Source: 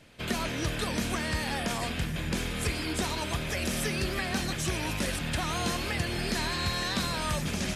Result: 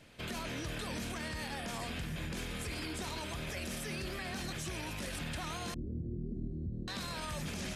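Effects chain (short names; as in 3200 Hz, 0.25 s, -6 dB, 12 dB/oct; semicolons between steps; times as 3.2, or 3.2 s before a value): 5.74–6.88 inverse Chebyshev low-pass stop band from 880 Hz, stop band 50 dB; limiter -28.5 dBFS, peak gain reduction 10.5 dB; gain -2.5 dB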